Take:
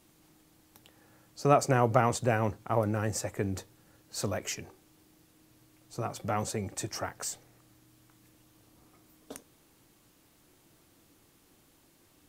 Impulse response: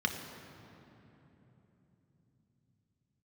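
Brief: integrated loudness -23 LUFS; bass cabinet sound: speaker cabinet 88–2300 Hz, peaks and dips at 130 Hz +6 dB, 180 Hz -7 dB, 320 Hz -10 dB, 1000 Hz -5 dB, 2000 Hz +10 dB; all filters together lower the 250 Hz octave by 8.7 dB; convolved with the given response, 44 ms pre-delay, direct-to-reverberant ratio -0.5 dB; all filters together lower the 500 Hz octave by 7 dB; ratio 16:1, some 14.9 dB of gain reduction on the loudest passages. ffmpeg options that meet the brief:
-filter_complex "[0:a]equalizer=f=250:t=o:g=-7.5,equalizer=f=500:t=o:g=-6,acompressor=threshold=-35dB:ratio=16,asplit=2[a][b];[1:a]atrim=start_sample=2205,adelay=44[c];[b][c]afir=irnorm=-1:irlink=0,volume=-6.5dB[d];[a][d]amix=inputs=2:normalize=0,highpass=f=88:w=0.5412,highpass=f=88:w=1.3066,equalizer=f=130:t=q:w=4:g=6,equalizer=f=180:t=q:w=4:g=-7,equalizer=f=320:t=q:w=4:g=-10,equalizer=f=1k:t=q:w=4:g=-5,equalizer=f=2k:t=q:w=4:g=10,lowpass=f=2.3k:w=0.5412,lowpass=f=2.3k:w=1.3066,volume=16dB"

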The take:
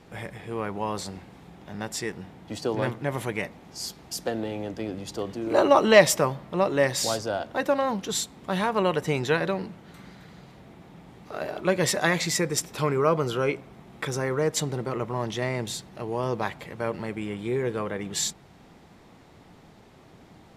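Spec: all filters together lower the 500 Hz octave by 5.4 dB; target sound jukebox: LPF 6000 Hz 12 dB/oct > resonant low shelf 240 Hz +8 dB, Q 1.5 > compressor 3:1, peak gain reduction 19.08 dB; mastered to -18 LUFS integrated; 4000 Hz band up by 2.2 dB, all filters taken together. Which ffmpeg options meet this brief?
-af "lowpass=6k,lowshelf=f=240:t=q:w=1.5:g=8,equalizer=f=500:t=o:g=-5,equalizer=f=4k:t=o:g=4,acompressor=threshold=-38dB:ratio=3,volume=20.5dB"

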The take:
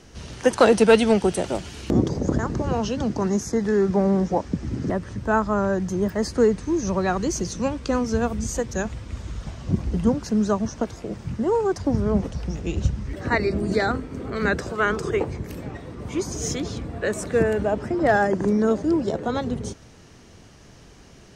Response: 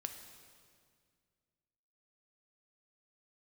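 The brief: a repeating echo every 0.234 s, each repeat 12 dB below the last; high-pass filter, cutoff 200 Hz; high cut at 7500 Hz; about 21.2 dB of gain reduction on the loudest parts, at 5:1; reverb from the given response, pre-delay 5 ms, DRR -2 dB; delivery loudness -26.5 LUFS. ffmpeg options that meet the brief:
-filter_complex "[0:a]highpass=200,lowpass=7.5k,acompressor=threshold=-36dB:ratio=5,aecho=1:1:234|468|702:0.251|0.0628|0.0157,asplit=2[a][b];[1:a]atrim=start_sample=2205,adelay=5[c];[b][c]afir=irnorm=-1:irlink=0,volume=4dB[d];[a][d]amix=inputs=2:normalize=0,volume=7dB"

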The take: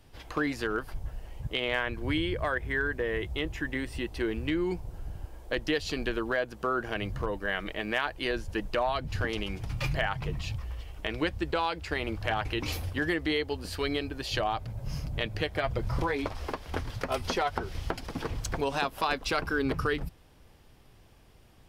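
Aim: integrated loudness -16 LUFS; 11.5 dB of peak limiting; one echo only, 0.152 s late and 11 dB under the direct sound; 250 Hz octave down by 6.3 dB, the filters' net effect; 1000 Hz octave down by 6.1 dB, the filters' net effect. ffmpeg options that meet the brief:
-af "equalizer=f=250:t=o:g=-8.5,equalizer=f=1k:t=o:g=-8,alimiter=level_in=3dB:limit=-24dB:level=0:latency=1,volume=-3dB,aecho=1:1:152:0.282,volume=22dB"

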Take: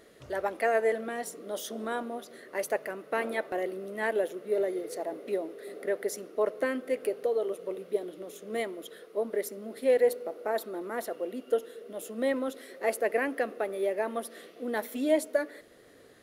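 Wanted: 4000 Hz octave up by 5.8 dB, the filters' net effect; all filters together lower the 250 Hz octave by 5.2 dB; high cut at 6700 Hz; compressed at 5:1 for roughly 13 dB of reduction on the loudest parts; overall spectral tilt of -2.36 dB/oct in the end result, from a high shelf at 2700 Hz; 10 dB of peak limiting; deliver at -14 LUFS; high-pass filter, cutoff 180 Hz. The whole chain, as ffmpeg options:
-af "highpass=180,lowpass=6.7k,equalizer=f=250:t=o:g=-6,highshelf=f=2.7k:g=3.5,equalizer=f=4k:t=o:g=5,acompressor=threshold=-35dB:ratio=5,volume=29.5dB,alimiter=limit=-4dB:level=0:latency=1"

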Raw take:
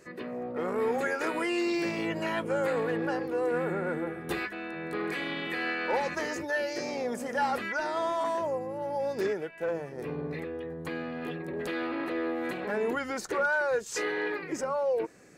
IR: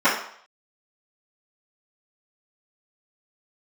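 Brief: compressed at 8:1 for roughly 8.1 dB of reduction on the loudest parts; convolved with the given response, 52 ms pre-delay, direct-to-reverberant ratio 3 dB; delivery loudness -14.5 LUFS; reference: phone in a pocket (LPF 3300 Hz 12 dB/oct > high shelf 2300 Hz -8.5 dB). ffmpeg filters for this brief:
-filter_complex "[0:a]acompressor=threshold=-33dB:ratio=8,asplit=2[a][b];[1:a]atrim=start_sample=2205,adelay=52[c];[b][c]afir=irnorm=-1:irlink=0,volume=-24dB[d];[a][d]amix=inputs=2:normalize=0,lowpass=3.3k,highshelf=f=2.3k:g=-8.5,volume=22dB"

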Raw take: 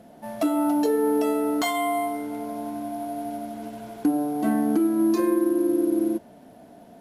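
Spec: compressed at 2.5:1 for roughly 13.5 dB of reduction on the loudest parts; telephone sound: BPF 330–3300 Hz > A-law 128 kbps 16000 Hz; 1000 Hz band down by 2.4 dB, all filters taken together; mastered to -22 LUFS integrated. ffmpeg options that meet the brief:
-af "equalizer=f=1k:t=o:g=-3.5,acompressor=threshold=-40dB:ratio=2.5,highpass=330,lowpass=3.3k,volume=18dB" -ar 16000 -c:a pcm_alaw

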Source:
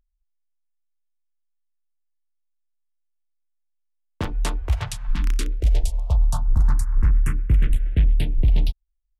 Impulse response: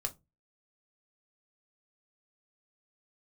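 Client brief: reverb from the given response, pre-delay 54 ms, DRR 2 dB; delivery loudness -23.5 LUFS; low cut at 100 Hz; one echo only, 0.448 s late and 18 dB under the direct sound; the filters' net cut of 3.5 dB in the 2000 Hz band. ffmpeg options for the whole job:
-filter_complex "[0:a]highpass=100,equalizer=f=2k:t=o:g=-4.5,aecho=1:1:448:0.126,asplit=2[a][b];[1:a]atrim=start_sample=2205,adelay=54[c];[b][c]afir=irnorm=-1:irlink=0,volume=-2.5dB[d];[a][d]amix=inputs=2:normalize=0,volume=5.5dB"

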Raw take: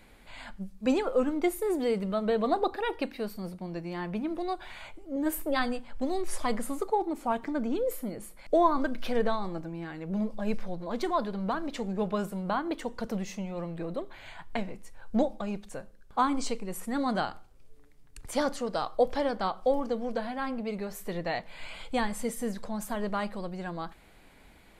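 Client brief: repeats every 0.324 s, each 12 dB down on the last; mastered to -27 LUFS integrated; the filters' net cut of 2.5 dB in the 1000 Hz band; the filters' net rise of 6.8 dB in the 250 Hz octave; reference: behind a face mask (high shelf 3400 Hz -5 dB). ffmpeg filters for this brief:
-af "equalizer=f=250:t=o:g=8.5,equalizer=f=1k:t=o:g=-3.5,highshelf=f=3.4k:g=-5,aecho=1:1:324|648|972:0.251|0.0628|0.0157,volume=1dB"

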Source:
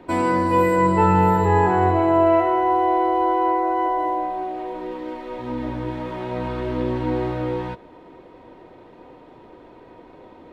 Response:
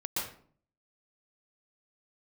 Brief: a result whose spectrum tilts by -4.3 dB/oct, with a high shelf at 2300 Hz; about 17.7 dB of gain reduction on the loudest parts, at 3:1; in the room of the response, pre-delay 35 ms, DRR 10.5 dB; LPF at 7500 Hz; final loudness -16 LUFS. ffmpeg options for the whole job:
-filter_complex "[0:a]lowpass=7.5k,highshelf=f=2.3k:g=-3.5,acompressor=threshold=-38dB:ratio=3,asplit=2[a][b];[1:a]atrim=start_sample=2205,adelay=35[c];[b][c]afir=irnorm=-1:irlink=0,volume=-15.5dB[d];[a][d]amix=inputs=2:normalize=0,volume=20.5dB"

